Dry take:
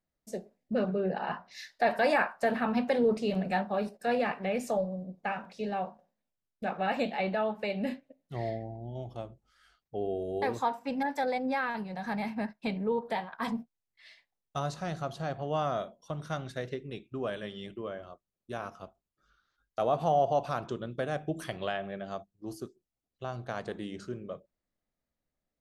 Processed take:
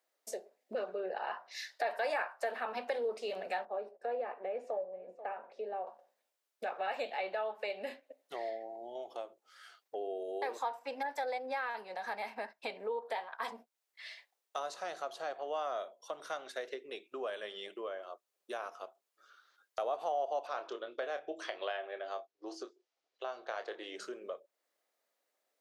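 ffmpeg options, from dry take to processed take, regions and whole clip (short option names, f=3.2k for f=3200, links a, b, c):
-filter_complex "[0:a]asettb=1/sr,asplit=3[a][b][c];[a]atrim=end=3.654[d];[b]atrim=start=3.65:end=5.87,asetpts=PTS-STARTPTS,afade=t=in:d=0.004:c=qsin,afade=t=out:st=2.216:d=0.004:c=qsin,bandpass=f=380:t=q:w=0.79,aecho=1:1:487|974:0.0708|0.0113,atrim=end_sample=97902[e];[c]atrim=start=5.866[f];[d][e]acrossfade=d=0.004:c1=hsin:c2=qsin[g];[g][f]acrossfade=d=0.004:c1=qsin:c2=hsin,asettb=1/sr,asplit=3[h][i][j];[h]atrim=end=20.474[k];[i]atrim=start=20.47:end=23.96,asetpts=PTS-STARTPTS,afade=t=in:d=0.004:c=qsin,afade=t=out:st=3.486:d=0.004:c=qsin,lowpass=f=6k:w=0.5412,lowpass=f=6k:w=1.3066,equalizer=f=200:t=o:w=0.28:g=-14,asplit=2[l][m];[m]adelay=28,volume=-9dB[n];[l][n]amix=inputs=2:normalize=0,atrim=end_sample=153909[o];[j]atrim=start=23.956[p];[k][o]acrossfade=d=0.004:c1=hsin:c2=qsin[q];[q][p]acrossfade=d=0.004:c1=qsin:c2=hsin,highpass=f=420:w=0.5412,highpass=f=420:w=1.3066,acompressor=threshold=-54dB:ratio=2,volume=8.5dB"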